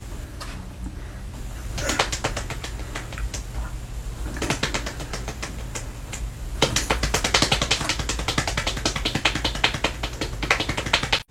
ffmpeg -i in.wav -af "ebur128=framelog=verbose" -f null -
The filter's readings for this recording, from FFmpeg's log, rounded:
Integrated loudness:
  I:         -24.7 LUFS
  Threshold: -35.3 LUFS
Loudness range:
  LRA:         7.8 LU
  Threshold: -45.3 LUFS
  LRA low:   -30.1 LUFS
  LRA high:  -22.3 LUFS